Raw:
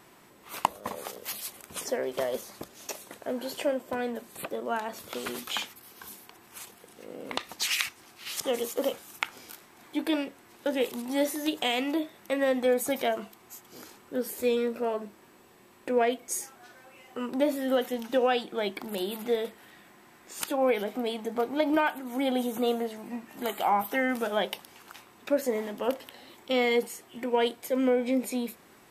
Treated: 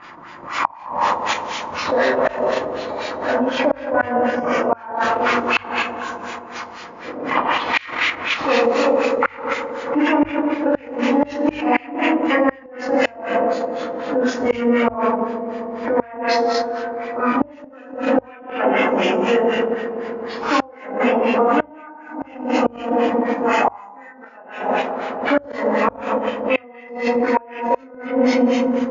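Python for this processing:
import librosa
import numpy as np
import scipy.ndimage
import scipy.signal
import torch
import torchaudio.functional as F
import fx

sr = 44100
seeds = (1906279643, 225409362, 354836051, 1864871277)

p1 = fx.freq_compress(x, sr, knee_hz=1800.0, ratio=1.5)
p2 = fx.notch(p1, sr, hz=780.0, q=19.0)
p3 = fx.rev_gated(p2, sr, seeds[0], gate_ms=430, shape='falling', drr_db=-8.0)
p4 = fx.filter_lfo_lowpass(p3, sr, shape='sine', hz=4.0, low_hz=680.0, high_hz=2900.0, q=1.0)
p5 = fx.low_shelf_res(p4, sr, hz=670.0, db=-8.0, q=1.5)
p6 = p5 + fx.echo_wet_lowpass(p5, sr, ms=130, feedback_pct=82, hz=550.0, wet_db=-7, dry=0)
p7 = fx.gate_flip(p6, sr, shuts_db=-16.0, range_db=-31)
p8 = fx.level_steps(p7, sr, step_db=11)
p9 = p7 + (p8 * librosa.db_to_amplitude(2.5))
p10 = fx.hum_notches(p9, sr, base_hz=50, count=2)
p11 = fx.pre_swell(p10, sr, db_per_s=100.0)
y = p11 * librosa.db_to_amplitude(7.0)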